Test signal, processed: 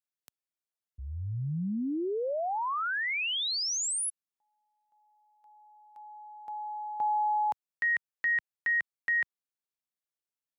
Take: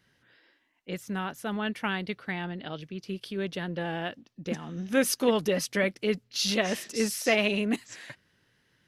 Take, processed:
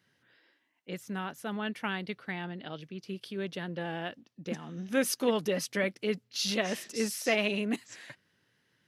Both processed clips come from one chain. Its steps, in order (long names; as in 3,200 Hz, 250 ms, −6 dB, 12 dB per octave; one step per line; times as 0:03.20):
high-pass filter 100 Hz
level −3.5 dB